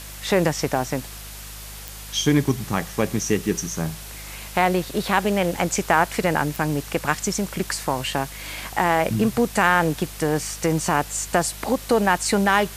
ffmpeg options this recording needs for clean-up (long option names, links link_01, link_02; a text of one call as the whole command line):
ffmpeg -i in.wav -af "adeclick=threshold=4,bandreject=frequency=51.2:width_type=h:width=4,bandreject=frequency=102.4:width_type=h:width=4,bandreject=frequency=153.6:width_type=h:width=4,bandreject=frequency=204.8:width_type=h:width=4,afwtdn=0.013" out.wav